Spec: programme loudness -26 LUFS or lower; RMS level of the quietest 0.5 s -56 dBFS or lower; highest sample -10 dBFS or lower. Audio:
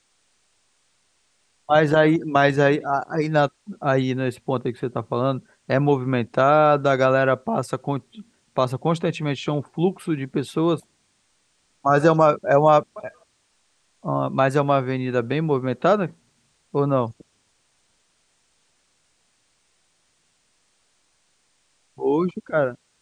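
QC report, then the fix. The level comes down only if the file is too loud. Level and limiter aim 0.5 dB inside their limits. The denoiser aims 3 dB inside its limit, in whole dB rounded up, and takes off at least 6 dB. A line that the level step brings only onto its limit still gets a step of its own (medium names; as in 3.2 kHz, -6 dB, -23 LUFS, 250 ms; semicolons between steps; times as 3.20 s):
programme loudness -21.5 LUFS: fail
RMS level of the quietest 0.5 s -66 dBFS: pass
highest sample -3.0 dBFS: fail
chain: trim -5 dB; peak limiter -10.5 dBFS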